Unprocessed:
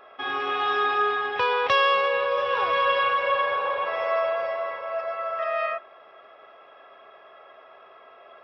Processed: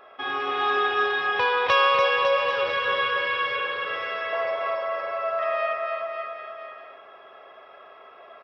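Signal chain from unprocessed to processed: 2.50–4.33 s: high-order bell 760 Hz -12.5 dB 1.1 oct; bouncing-ball echo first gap 290 ms, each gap 0.9×, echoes 5

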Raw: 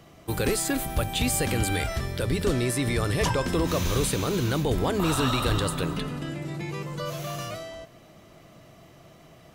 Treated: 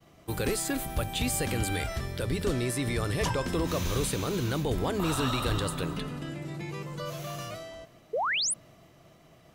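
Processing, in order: painted sound rise, 8.13–8.54 s, 410–11000 Hz -24 dBFS; expander -49 dBFS; trim -4 dB

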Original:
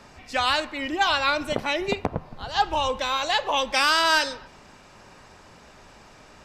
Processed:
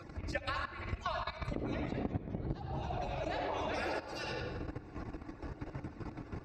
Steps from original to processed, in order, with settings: harmonic-percussive separation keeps percussive; 1.65–3.94 s: ever faster or slower copies 177 ms, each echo -2 st, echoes 2; RIAA curve playback; band-stop 1 kHz, Q 19; reverberation RT60 1.1 s, pre-delay 54 ms, DRR 0 dB; level held to a coarse grid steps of 14 dB; graphic EQ with 31 bands 315 Hz +10 dB, 3.15 kHz -11 dB, 10 kHz -5 dB; compression 12:1, threshold -38 dBFS, peak gain reduction 26.5 dB; high-pass 44 Hz; tape noise reduction on one side only encoder only; trim +5 dB

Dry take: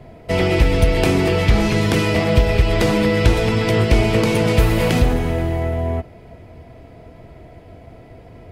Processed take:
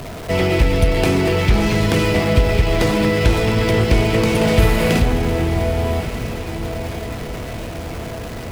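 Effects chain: jump at every zero crossing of -26 dBFS; 4.36–4.99 s: doubling 50 ms -4 dB; echo that smears into a reverb 1161 ms, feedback 58%, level -11 dB; trim -1 dB

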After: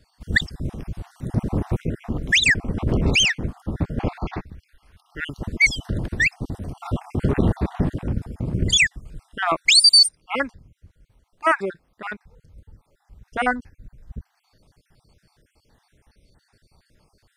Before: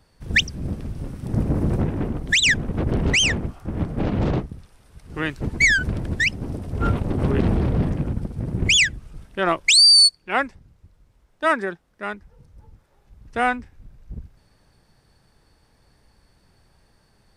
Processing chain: random holes in the spectrogram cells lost 43%; 4.18–5.20 s: graphic EQ 125/250/500/2000/8000 Hz -8/-5/-7/+4/-11 dB; trim +1.5 dB

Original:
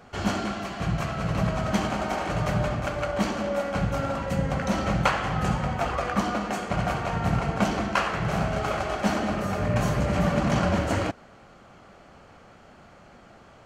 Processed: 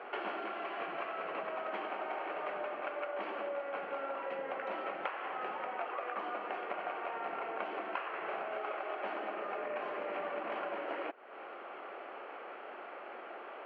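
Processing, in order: elliptic band-pass 360–2700 Hz, stop band 50 dB; compression 6:1, threshold -44 dBFS, peak gain reduction 24 dB; trim +6.5 dB

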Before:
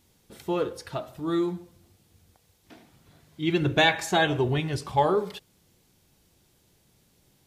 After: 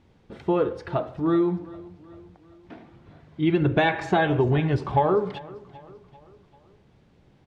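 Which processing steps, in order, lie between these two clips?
Bessel low-pass 1.7 kHz, order 2; compression 4:1, threshold -25 dBFS, peak gain reduction 7.5 dB; on a send: feedback delay 391 ms, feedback 50%, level -20 dB; on the sum: trim +7.5 dB

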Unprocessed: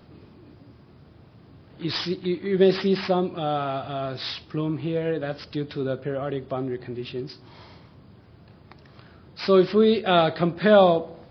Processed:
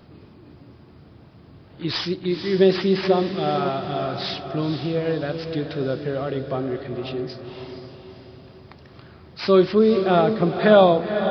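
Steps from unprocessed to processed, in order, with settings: 9.79–10.59 s: low-pass 1.2 kHz 6 dB/octave; echo that smears into a reverb 497 ms, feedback 46%, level -8 dB; trim +2 dB

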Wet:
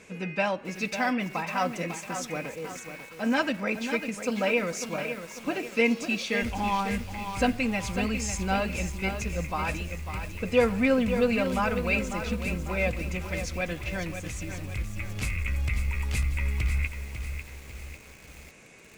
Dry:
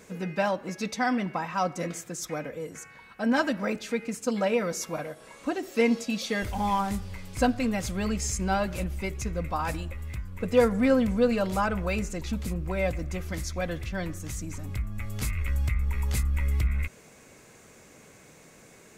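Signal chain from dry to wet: low-pass 9.9 kHz 12 dB/octave; peaking EQ 2.5 kHz +10.5 dB 0.48 oct; bit-crushed delay 547 ms, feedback 55%, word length 7-bit, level -8 dB; trim -1.5 dB

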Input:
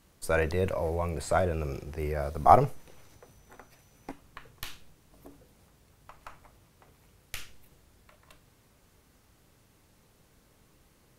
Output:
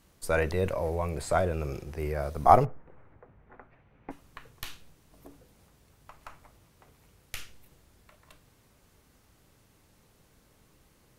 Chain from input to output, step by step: 2.64–4.10 s: low-pass 1.6 kHz -> 2.6 kHz 24 dB/octave

